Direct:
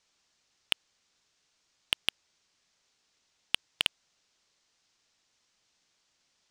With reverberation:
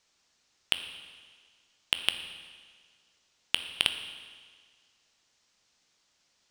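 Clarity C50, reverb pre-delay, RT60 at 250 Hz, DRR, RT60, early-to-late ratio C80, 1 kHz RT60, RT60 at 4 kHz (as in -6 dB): 9.0 dB, 12 ms, 1.7 s, 7.5 dB, 1.7 s, 10.5 dB, 1.7 s, 1.6 s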